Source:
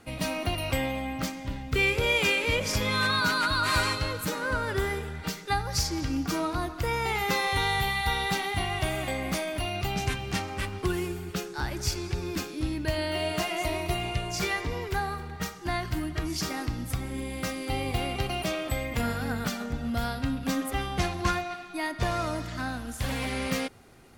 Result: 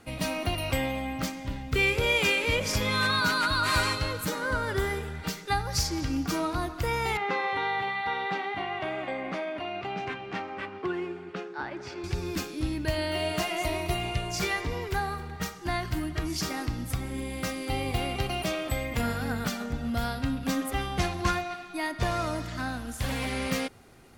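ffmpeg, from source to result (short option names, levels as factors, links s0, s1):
-filter_complex "[0:a]asettb=1/sr,asplit=3[s0][s1][s2];[s0]atrim=end=4.274[s3];[s1]atrim=start=4.27:end=4.96,asetpts=PTS-STARTPTS,afade=t=in:d=0.004:c=qsin,afade=t=out:st=0.686:d=0.004:c=qsin,bandreject=f=2600:w=12[s4];[s2]atrim=start=4.956[s5];[s3][s4]acrossfade=d=0.004:c1=hsin:c2=qsin[s6];[s6][s5]acrossfade=d=0.004:c1=qsin:c2=hsin,asettb=1/sr,asplit=3[s7][s8][s9];[s7]atrim=end=7.174[s10];[s8]atrim=start=7.17:end=12.04,asetpts=PTS-STARTPTS,afade=t=in:d=0.004:c=qsin,afade=t=out:st=4.866:d=0.004:c=qsin,highpass=260,lowpass=2200[s11];[s9]atrim=start=12.036[s12];[s10][s11]acrossfade=d=0.004:c1=hsin:c2=qsin[s13];[s13][s12]acrossfade=d=0.004:c1=qsin:c2=hsin"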